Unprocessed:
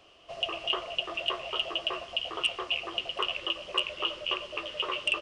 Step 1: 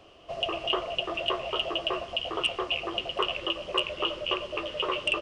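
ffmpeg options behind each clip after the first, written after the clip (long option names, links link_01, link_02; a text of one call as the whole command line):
ffmpeg -i in.wav -af "tiltshelf=frequency=970:gain=4.5,volume=4dB" out.wav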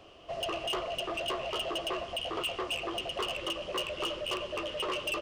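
ffmpeg -i in.wav -af "asoftclip=type=tanh:threshold=-28.5dB" out.wav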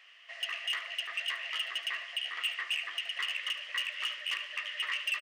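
ffmpeg -i in.wav -af "highpass=frequency=1900:width_type=q:width=8.8,aecho=1:1:73|146|219:0.178|0.0587|0.0194,volume=-3.5dB" out.wav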